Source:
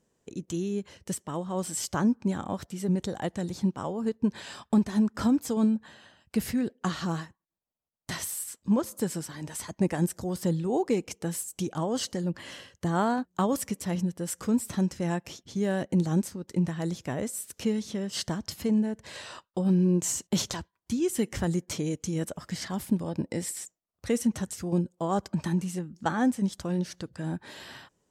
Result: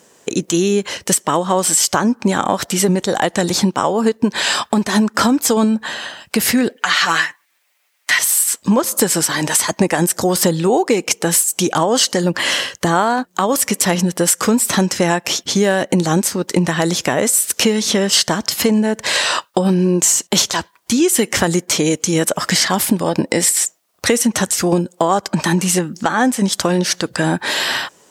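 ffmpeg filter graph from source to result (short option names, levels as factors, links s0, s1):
-filter_complex "[0:a]asettb=1/sr,asplit=3[s0][s1][s2];[s0]atrim=end=6.764[s3];[s1]atrim=start=6.76:end=8.19,asetpts=PTS-STARTPTS,afade=t=in:d=0.004:c=qsin,afade=t=out:st=1.426:d=0.004:c=qsin,highpass=f=880:p=1,equalizer=f=2100:w=1.4:g=11.5,aecho=1:1:6.8:0.68,atrim=end_sample=63063[s4];[s2]atrim=start=8.186[s5];[s3][s4]acrossfade=d=0.004:c1=hsin:c2=qsin[s6];[s6][s5]acrossfade=d=0.004:c1=qsin:c2=hsin,highpass=f=690:p=1,acompressor=threshold=0.0112:ratio=6,alimiter=level_in=26.6:limit=0.891:release=50:level=0:latency=1,volume=0.891"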